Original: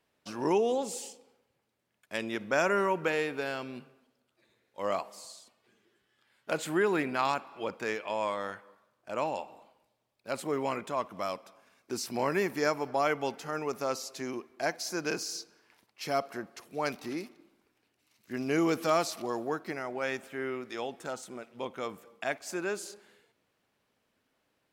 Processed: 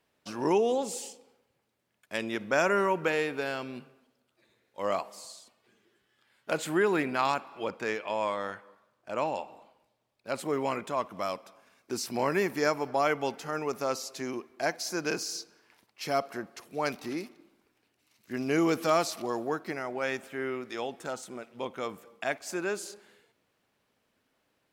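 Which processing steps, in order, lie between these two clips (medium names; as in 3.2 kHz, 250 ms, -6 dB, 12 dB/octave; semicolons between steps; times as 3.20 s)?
7.70–10.40 s: treble shelf 8.5 kHz -5.5 dB; trim +1.5 dB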